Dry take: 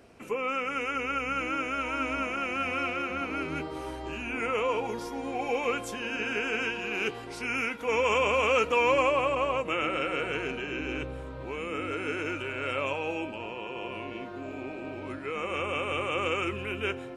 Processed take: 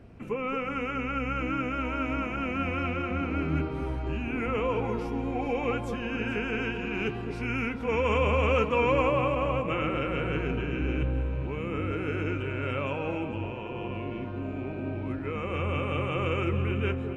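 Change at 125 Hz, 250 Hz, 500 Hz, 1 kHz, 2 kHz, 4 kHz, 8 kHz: +12.5 dB, +5.0 dB, +0.5 dB, -1.5 dB, -3.0 dB, -4.5 dB, under -10 dB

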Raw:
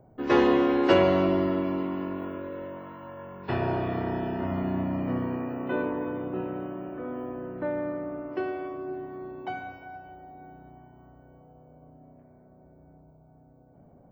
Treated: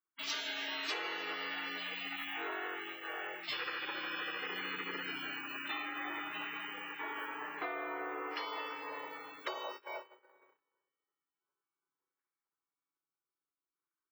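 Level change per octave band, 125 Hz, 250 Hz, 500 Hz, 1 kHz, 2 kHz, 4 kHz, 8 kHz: -30.5 dB, -22.5 dB, -19.0 dB, -8.5 dB, 0.0 dB, +2.5 dB, no reading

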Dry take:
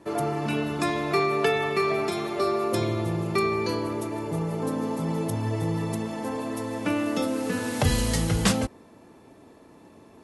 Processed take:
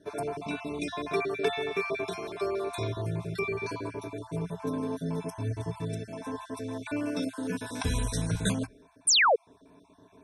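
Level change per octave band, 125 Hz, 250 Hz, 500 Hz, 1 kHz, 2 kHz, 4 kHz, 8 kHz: -5.5 dB, -6.5 dB, -5.0 dB, -4.5 dB, -1.0 dB, +1.5 dB, +2.0 dB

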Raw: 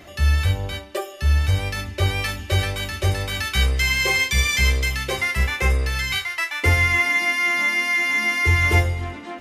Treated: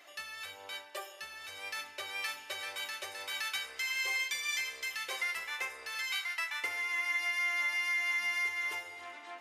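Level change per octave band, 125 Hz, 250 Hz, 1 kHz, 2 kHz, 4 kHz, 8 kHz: under -40 dB, under -25 dB, -14.0 dB, -12.5 dB, -12.0 dB, -12.5 dB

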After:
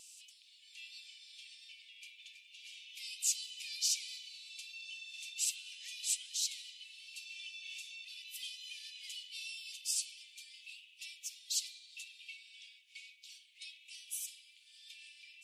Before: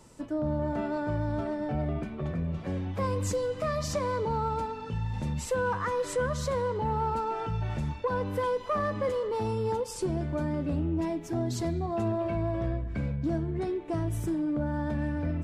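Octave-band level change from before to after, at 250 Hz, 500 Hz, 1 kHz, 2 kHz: under -40 dB, under -40 dB, under -40 dB, -8.5 dB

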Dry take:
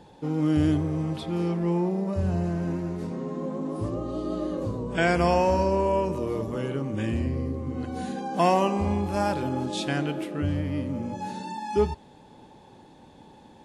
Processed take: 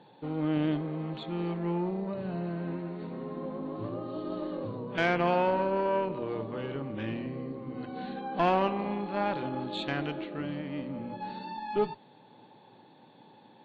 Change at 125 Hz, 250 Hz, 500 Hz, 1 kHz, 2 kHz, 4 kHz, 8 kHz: -8.5 dB, -6.0 dB, -4.5 dB, -3.5 dB, -2.5 dB, -3.5 dB, under -20 dB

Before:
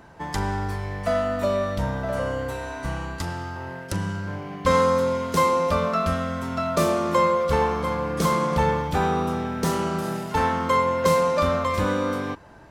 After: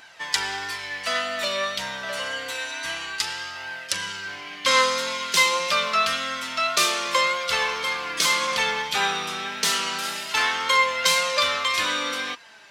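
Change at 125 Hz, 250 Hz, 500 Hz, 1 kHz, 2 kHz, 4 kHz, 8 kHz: -20.5 dB, -14.0 dB, -7.5 dB, -2.0 dB, +8.5 dB, +14.0 dB, +10.5 dB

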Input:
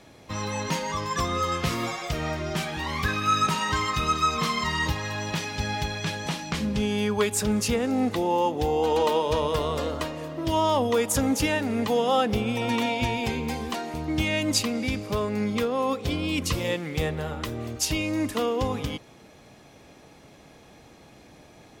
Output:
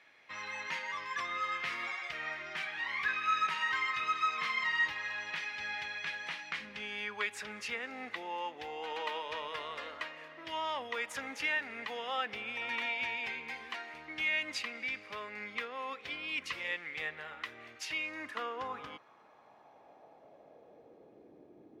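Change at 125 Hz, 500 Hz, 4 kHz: -31.5 dB, -19.0 dB, -9.5 dB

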